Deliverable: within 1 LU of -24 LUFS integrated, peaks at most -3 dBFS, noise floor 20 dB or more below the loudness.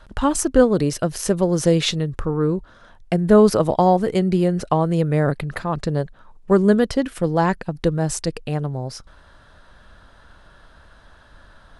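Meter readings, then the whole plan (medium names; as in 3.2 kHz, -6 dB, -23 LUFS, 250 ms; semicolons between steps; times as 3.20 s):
loudness -20.0 LUFS; peak level -1.5 dBFS; loudness target -24.0 LUFS
-> trim -4 dB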